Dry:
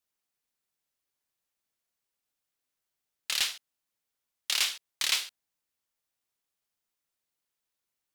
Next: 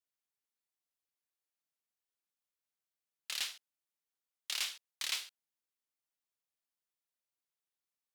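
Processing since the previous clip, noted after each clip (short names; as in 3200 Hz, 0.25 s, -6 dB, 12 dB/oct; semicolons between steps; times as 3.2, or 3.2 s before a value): low shelf 150 Hz -8 dB; gain -9 dB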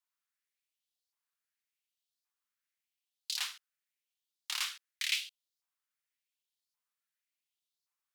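LFO high-pass saw up 0.89 Hz 920–4700 Hz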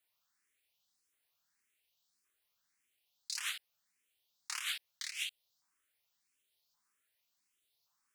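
negative-ratio compressor -42 dBFS, ratio -1; endless phaser +1.7 Hz; gain +6 dB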